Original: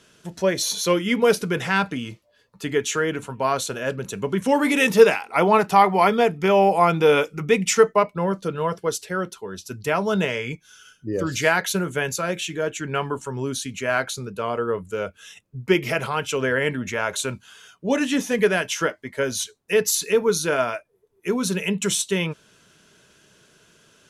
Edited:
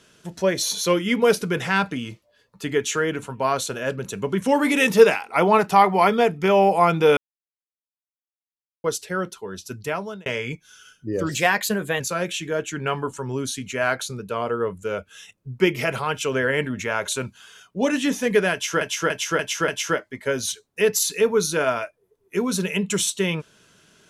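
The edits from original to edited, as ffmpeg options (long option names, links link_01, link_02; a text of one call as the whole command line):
ffmpeg -i in.wav -filter_complex "[0:a]asplit=10[link_01][link_02][link_03][link_04][link_05][link_06][link_07][link_08][link_09][link_10];[link_01]atrim=end=7.17,asetpts=PTS-STARTPTS,afade=type=out:start_time=7.166:duration=0.004:curve=hsin[link_11];[link_02]atrim=start=7.17:end=8.84,asetpts=PTS-STARTPTS,volume=0[link_12];[link_03]atrim=start=8.84:end=10.26,asetpts=PTS-STARTPTS,afade=type=in:duration=0.004:curve=hsin,afade=type=out:start_time=0.87:duration=0.55[link_13];[link_04]atrim=start=10.26:end=11.294,asetpts=PTS-STARTPTS,afade=type=in:duration=0.004:curve=hsin[link_14];[link_05]atrim=start=11.29:end=12.08,asetpts=PTS-STARTPTS,asetrate=48951,aresample=44100,atrim=end_sample=31386,asetpts=PTS-STARTPTS[link_15];[link_06]atrim=start=12.076:end=18.892[link_16];[link_07]atrim=start=18.598:end=18.892[link_17];[link_08]atrim=start=18.598:end=18.892[link_18];[link_09]atrim=start=18.598:end=18.892[link_19];[link_10]atrim=start=18.598[link_20];[link_11][link_12][link_13][link_14]concat=n=4:v=0:a=1[link_21];[link_21][link_15]acrossfade=duration=0.004:curve1=hsin:curve2=hsin[link_22];[link_22][link_16]acrossfade=duration=0.004:curve1=hsin:curve2=hsin[link_23];[link_23][link_17]acrossfade=duration=0.004:curve1=hsin:curve2=hsin[link_24];[link_24][link_18]acrossfade=duration=0.004:curve1=hsin:curve2=hsin[link_25];[link_25][link_19]acrossfade=duration=0.004:curve1=hsin:curve2=hsin[link_26];[link_26][link_20]acrossfade=duration=0.004:curve1=hsin:curve2=hsin" out.wav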